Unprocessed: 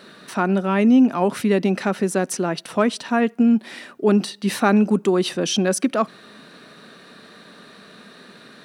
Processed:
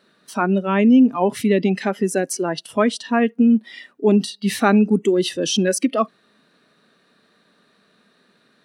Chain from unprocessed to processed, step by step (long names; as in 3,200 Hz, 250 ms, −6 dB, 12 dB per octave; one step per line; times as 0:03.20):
noise reduction from a noise print of the clip's start 16 dB
level +1.5 dB